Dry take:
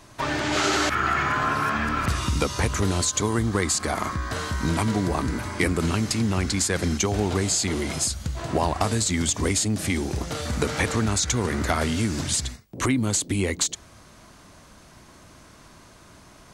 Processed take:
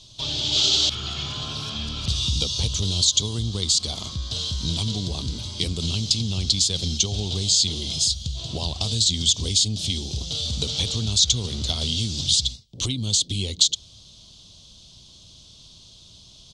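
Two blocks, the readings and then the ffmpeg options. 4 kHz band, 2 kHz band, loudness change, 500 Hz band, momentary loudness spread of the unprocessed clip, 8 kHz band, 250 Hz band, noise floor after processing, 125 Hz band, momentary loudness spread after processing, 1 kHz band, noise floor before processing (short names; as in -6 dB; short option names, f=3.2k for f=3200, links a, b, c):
+10.5 dB, -14.0 dB, +2.0 dB, -10.0 dB, 5 LU, +2.0 dB, -7.5 dB, -49 dBFS, -0.5 dB, 10 LU, -16.0 dB, -50 dBFS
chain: -af "firequalizer=gain_entry='entry(120,0);entry(300,-12);entry(430,-9);entry(1800,-25);entry(3300,14);entry(13000,-18)':delay=0.05:min_phase=1"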